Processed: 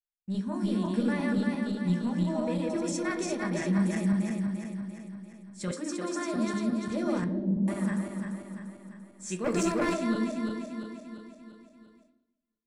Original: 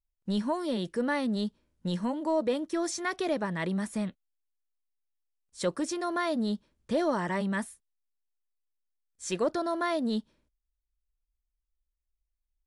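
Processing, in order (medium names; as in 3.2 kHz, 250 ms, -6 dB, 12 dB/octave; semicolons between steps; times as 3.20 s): backward echo that repeats 172 ms, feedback 72%, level -0.5 dB; 7.24–7.68 s: Gaussian low-pass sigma 17 samples; 9.44–9.94 s: waveshaping leveller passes 2; tilt EQ -1.5 dB/octave; gate with hold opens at -45 dBFS; reverberation RT60 0.65 s, pre-delay 3 ms, DRR 6 dB; level rider gain up to 4 dB; 5.71–6.34 s: steep high-pass 210 Hz; trim -6.5 dB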